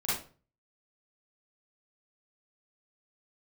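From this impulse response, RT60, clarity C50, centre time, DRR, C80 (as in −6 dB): 0.40 s, −0.5 dB, 56 ms, −10.5 dB, 8.0 dB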